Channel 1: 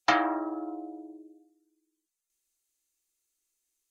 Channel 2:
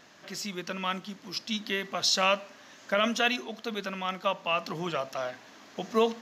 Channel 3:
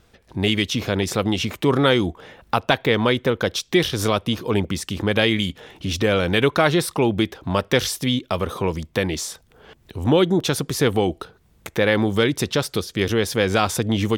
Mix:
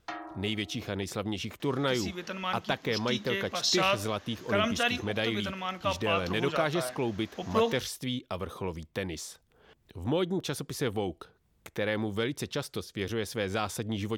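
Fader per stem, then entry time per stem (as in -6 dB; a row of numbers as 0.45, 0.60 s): -15.5, -2.0, -12.0 dB; 0.00, 1.60, 0.00 s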